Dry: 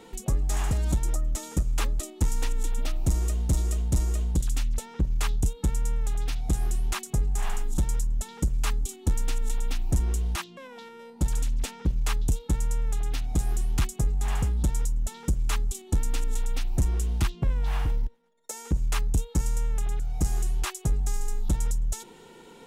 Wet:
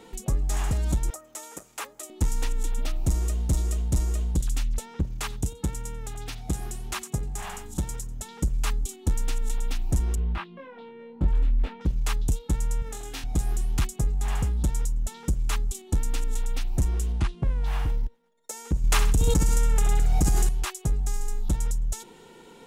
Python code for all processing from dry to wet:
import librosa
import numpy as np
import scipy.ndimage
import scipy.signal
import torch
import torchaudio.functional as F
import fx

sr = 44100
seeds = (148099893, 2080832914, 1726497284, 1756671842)

y = fx.chain(x, sr, fx.highpass(hz=540.0, slope=12),
    fx.dynamic_eq(hz=4100.0, q=1.0, threshold_db=-51.0, ratio=4.0, max_db=-6), at=(1.1, 2.1))
y = fx.chain(y, sr, fx.highpass(hz=65.0, slope=12),
    fx.echo_single(ms=91, db=-21.0), at=(5.02, 8.25))
y = fx.chain(y, sr, fx.air_absorb(metres=440.0),
    fx.doubler(ms=22.0, db=-2.0), at=(10.15, 11.81))
y = fx.chain(y, sr, fx.highpass(hz=200.0, slope=6),
    fx.room_flutter(wall_m=3.8, rt60_s=0.32), at=(12.82, 13.24))
y = fx.chain(y, sr, fx.cvsd(bps=64000),
    fx.high_shelf(hz=4100.0, db=-10.5),
    fx.resample_bad(factor=2, down='none', up='filtered'), at=(17.12, 17.64))
y = fx.chain(y, sr, fx.room_flutter(wall_m=11.0, rt60_s=0.43),
    fx.env_flatten(amount_pct=100), at=(18.84, 20.49))